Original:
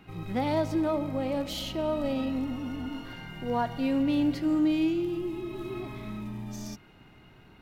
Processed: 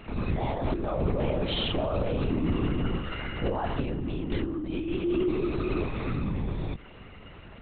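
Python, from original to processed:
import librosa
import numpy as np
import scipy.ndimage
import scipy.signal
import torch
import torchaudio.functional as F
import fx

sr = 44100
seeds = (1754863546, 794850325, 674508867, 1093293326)

y = fx.over_compress(x, sr, threshold_db=-32.0, ratio=-1.0)
y = fx.lpc_vocoder(y, sr, seeds[0], excitation='whisper', order=10)
y = F.gain(torch.from_numpy(y), 4.5).numpy()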